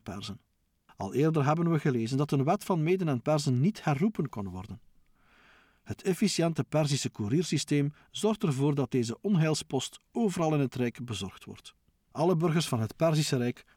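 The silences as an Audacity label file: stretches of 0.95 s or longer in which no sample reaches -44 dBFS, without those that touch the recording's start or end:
4.770000	5.870000	silence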